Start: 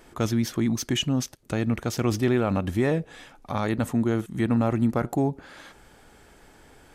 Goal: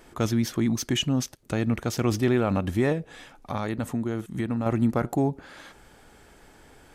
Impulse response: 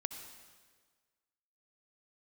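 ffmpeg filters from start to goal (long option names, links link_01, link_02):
-filter_complex "[0:a]asettb=1/sr,asplit=3[link_01][link_02][link_03];[link_01]atrim=end=2.924[link_04];[link_02]atrim=start=2.92:end=4.66,asetpts=PTS-STARTPTS,afade=type=in:duration=0.004:curve=qsin,afade=type=out:start_time=1.736:duration=0.004:curve=qsin,acompressor=threshold=-26dB:ratio=3[link_05];[link_03]atrim=start=4.656[link_06];[link_04][link_05]acrossfade=duration=0.004:curve1=hsin:curve2=qsin[link_07];[link_07][link_06]acrossfade=duration=0.004:curve1=qsin:curve2=hsin"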